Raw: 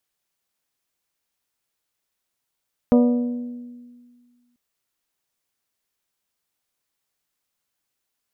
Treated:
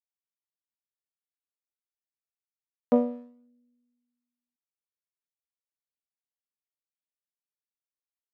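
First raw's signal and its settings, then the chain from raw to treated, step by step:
glass hit bell, length 1.64 s, lowest mode 243 Hz, modes 6, decay 1.82 s, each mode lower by 5.5 dB, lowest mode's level -11 dB
local Wiener filter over 41 samples; high-pass 290 Hz; upward expansion 2.5:1, over -33 dBFS

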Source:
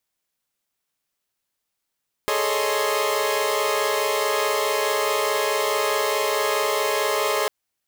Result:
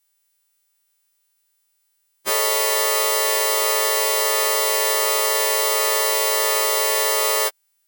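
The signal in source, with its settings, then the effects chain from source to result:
chord G#4/A4/C#5/D#5/C6 saw, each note -24.5 dBFS 5.20 s
partials quantised in pitch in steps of 2 st; high-pass 82 Hz

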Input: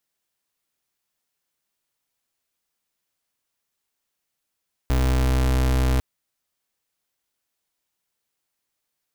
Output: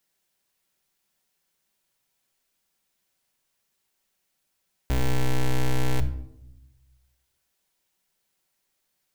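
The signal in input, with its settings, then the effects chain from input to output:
pulse 64.3 Hz, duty 35% -19.5 dBFS 1.10 s
peaking EQ 1.2 kHz -4 dB 0.2 oct; in parallel at -6 dB: integer overflow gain 22 dB; on the sum: simulated room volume 2200 m³, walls furnished, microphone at 1.1 m

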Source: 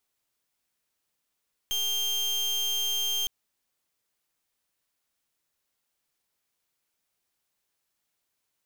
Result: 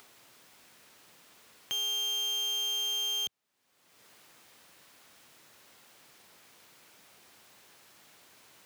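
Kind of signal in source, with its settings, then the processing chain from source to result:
pulse 3.18 kHz, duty 34% -28 dBFS 1.56 s
high-pass 110 Hz 12 dB/octave; treble shelf 5.3 kHz -9.5 dB; upward compressor, threshold -37 dBFS

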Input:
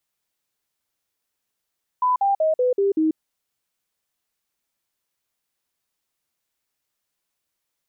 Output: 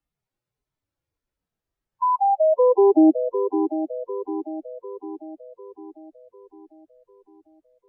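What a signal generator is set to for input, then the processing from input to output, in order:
stepped sine 1 kHz down, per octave 3, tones 6, 0.14 s, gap 0.05 s -16 dBFS
harmonic-percussive separation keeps harmonic; tilt EQ -4 dB/octave; on a send: shuffle delay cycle 749 ms, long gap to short 3:1, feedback 49%, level -9.5 dB

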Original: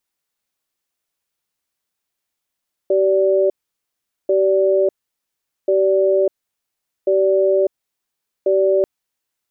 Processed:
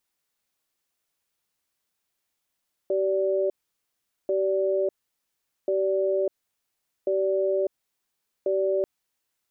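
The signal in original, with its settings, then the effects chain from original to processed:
cadence 384 Hz, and 581 Hz, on 0.60 s, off 0.79 s, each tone -15 dBFS 5.94 s
peak limiter -18 dBFS

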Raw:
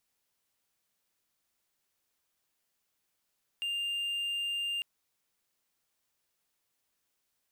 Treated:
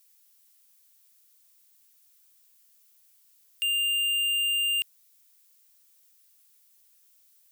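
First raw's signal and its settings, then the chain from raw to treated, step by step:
tone triangle 2.8 kHz -29 dBFS 1.20 s
tilt EQ +5 dB/octave

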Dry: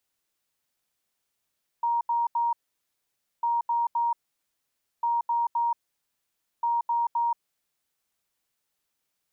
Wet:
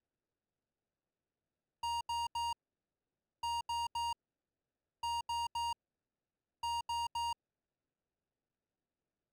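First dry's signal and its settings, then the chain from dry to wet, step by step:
beep pattern sine 940 Hz, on 0.18 s, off 0.08 s, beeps 3, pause 0.90 s, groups 4, -22 dBFS
median filter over 41 samples

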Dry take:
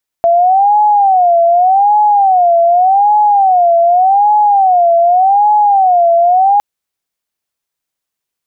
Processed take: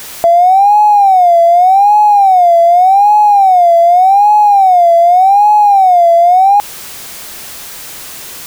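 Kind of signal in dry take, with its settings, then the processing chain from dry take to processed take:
siren wail 677–842 Hz 0.85 per s sine -5.5 dBFS 6.36 s
jump at every zero crossing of -26 dBFS; in parallel at -2 dB: peak limiter -15.5 dBFS

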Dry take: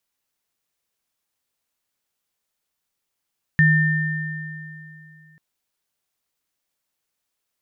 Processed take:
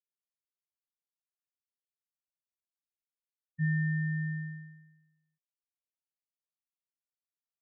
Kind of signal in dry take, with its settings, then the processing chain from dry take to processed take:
sine partials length 1.79 s, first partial 156 Hz, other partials 1.8 kHz, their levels -1 dB, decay 2.77 s, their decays 2.68 s, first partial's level -13 dB
reverse; compression 6:1, threshold -28 dBFS; reverse; gated-style reverb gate 90 ms falling, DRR 3.5 dB; spectral contrast expander 2.5:1

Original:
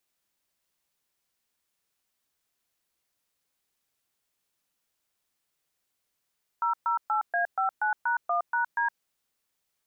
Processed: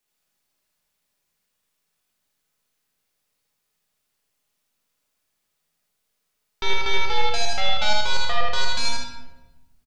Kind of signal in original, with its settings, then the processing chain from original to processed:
DTMF "008A59#1#D", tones 115 ms, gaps 124 ms, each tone -26 dBFS
tracing distortion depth 0.39 ms; on a send: loudspeakers at several distances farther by 27 m -3 dB, 52 m -11 dB; on the sum: simulated room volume 560 m³, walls mixed, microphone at 1.4 m

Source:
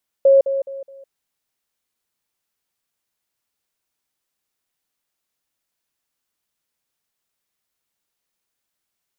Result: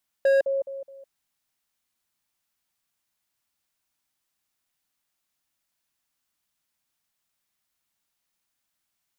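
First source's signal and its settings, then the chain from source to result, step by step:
level ladder 546 Hz -8 dBFS, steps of -10 dB, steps 4, 0.16 s 0.05 s
peaking EQ 450 Hz -8.5 dB 0.53 oct; hard clipper -17.5 dBFS

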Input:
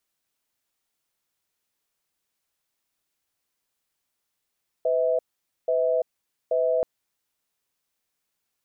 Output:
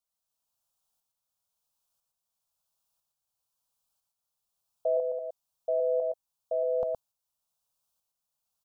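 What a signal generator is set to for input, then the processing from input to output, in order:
cadence 503 Hz, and 646 Hz, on 0.34 s, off 0.49 s, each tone -22.5 dBFS 1.98 s
tremolo saw up 1 Hz, depth 65%; static phaser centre 820 Hz, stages 4; delay 117 ms -4 dB

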